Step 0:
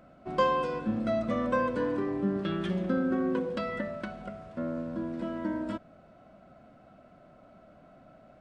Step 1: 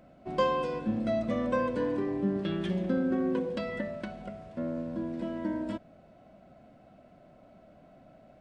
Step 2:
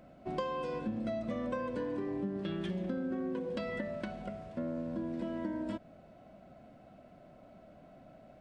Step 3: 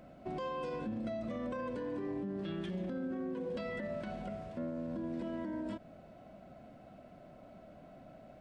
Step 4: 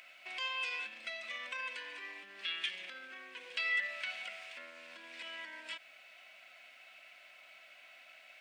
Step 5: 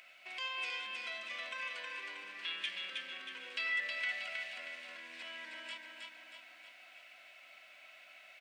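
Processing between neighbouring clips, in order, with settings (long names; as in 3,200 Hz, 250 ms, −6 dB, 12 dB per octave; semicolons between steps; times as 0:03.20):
parametric band 1,300 Hz −8 dB 0.47 octaves
downward compressor 6 to 1, threshold −33 dBFS, peak gain reduction 11 dB
brickwall limiter −33 dBFS, peak gain reduction 11.5 dB; level +1.5 dB
high-pass with resonance 2,400 Hz, resonance Q 3; level +10 dB
repeating echo 317 ms, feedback 51%, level −3.5 dB; level −2 dB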